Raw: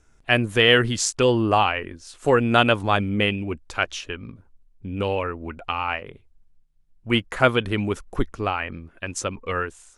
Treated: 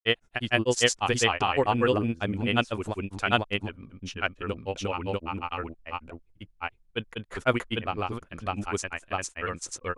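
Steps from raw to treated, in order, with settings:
granular cloud, grains 20 per second, spray 868 ms, pitch spread up and down by 0 semitones
level −3.5 dB

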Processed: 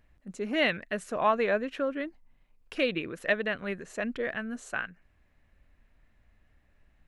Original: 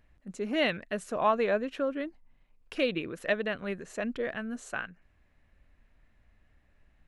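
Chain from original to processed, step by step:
dynamic equaliser 1,900 Hz, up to +4 dB, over −48 dBFS, Q 1.5

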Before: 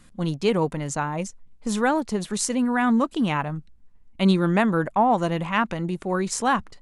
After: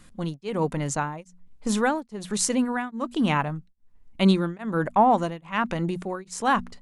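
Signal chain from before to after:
mains-hum notches 60/120/180/240 Hz
tremolo along a rectified sine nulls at 1.2 Hz
level +1.5 dB

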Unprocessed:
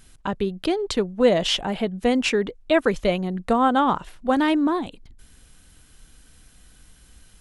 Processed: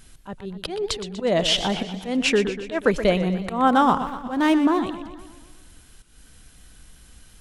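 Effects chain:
0:03.67–0:04.80: running median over 9 samples
volume swells 180 ms
feedback echo with a swinging delay time 121 ms, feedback 56%, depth 120 cents, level −11 dB
level +2 dB

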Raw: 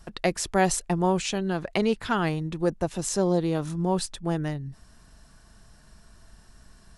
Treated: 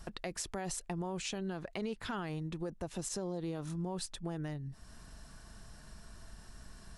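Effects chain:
brickwall limiter −19 dBFS, peak gain reduction 11 dB
downward compressor 2 to 1, threshold −45 dBFS, peak gain reduction 11.5 dB
level +1 dB

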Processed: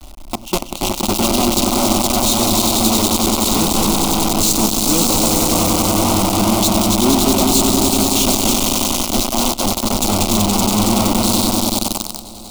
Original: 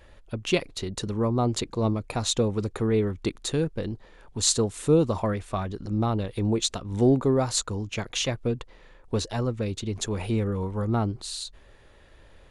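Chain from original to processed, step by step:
low-shelf EQ 180 Hz +8.5 dB
in parallel at −2.5 dB: compressor whose output falls as the input rises −25 dBFS, ratio −0.5
on the sum: dynamic equaliser 470 Hz, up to +7 dB, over −38 dBFS, Q 3.3
on a send: echo that builds up and dies away 94 ms, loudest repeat 5, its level −5.5 dB
on the sum: log-companded quantiser 2 bits
phaser with its sweep stopped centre 460 Hz, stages 6
level −4.5 dB

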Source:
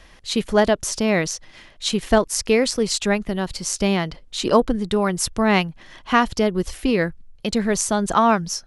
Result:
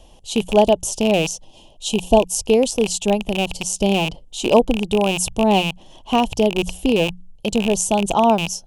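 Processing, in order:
loose part that buzzes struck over −30 dBFS, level −7 dBFS
tilt shelving filter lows +6 dB, about 730 Hz
mains-hum notches 60/120/180 Hz
gain on a spectral selection 0:01.44–0:02.46, 1,100–2,400 Hz −9 dB
drawn EQ curve 200 Hz 0 dB, 370 Hz +2 dB, 860 Hz +9 dB, 1,300 Hz −9 dB, 2,000 Hz −14 dB, 2,900 Hz +11 dB, 4,400 Hz +2 dB, 7,000 Hz +12 dB
level −3.5 dB

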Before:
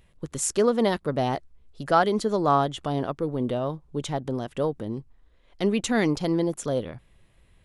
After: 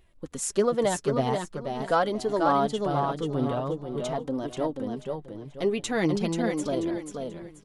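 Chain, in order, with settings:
parametric band 530 Hz +2 dB 2.1 octaves
repeating echo 485 ms, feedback 29%, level −5 dB
flanger 0.44 Hz, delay 2.7 ms, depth 4.9 ms, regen +26%

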